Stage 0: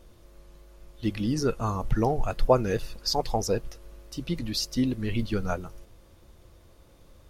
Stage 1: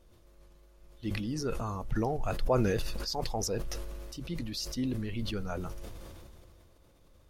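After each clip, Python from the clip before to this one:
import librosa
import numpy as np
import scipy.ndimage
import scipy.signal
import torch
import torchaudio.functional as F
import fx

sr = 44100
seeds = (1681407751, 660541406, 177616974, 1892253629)

y = fx.sustainer(x, sr, db_per_s=22.0)
y = y * librosa.db_to_amplitude(-8.5)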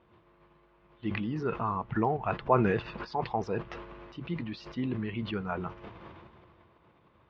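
y = fx.cabinet(x, sr, low_hz=140.0, low_slope=12, high_hz=2800.0, hz=(270.0, 540.0, 1000.0), db=(-6, -8, 6))
y = y * librosa.db_to_amplitude(5.0)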